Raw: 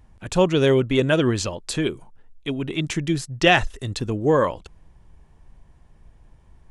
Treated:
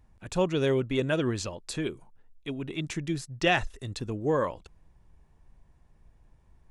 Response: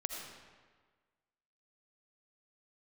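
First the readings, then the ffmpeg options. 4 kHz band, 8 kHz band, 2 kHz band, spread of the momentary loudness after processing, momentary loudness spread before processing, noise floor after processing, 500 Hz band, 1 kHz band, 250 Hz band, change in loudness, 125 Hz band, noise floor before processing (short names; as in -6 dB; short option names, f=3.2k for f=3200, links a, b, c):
-9.0 dB, -8.0 dB, -8.0 dB, 13 LU, 13 LU, -62 dBFS, -8.0 dB, -8.0 dB, -8.0 dB, -8.0 dB, -8.0 dB, -54 dBFS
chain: -af "bandreject=f=3.1k:w=19,volume=-8dB"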